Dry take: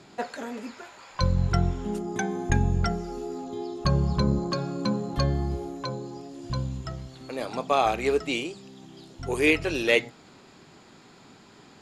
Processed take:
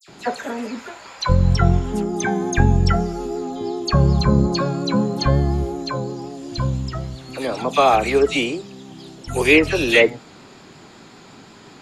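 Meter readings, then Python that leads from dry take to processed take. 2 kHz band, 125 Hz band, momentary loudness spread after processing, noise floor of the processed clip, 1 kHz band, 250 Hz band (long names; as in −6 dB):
+8.0 dB, +8.0 dB, 15 LU, −45 dBFS, +8.0 dB, +8.0 dB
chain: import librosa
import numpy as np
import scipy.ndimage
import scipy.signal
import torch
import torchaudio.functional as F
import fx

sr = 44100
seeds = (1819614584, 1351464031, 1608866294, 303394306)

y = fx.vibrato(x, sr, rate_hz=5.5, depth_cents=31.0)
y = fx.dispersion(y, sr, late='lows', ms=82.0, hz=2500.0)
y = F.gain(torch.from_numpy(y), 8.0).numpy()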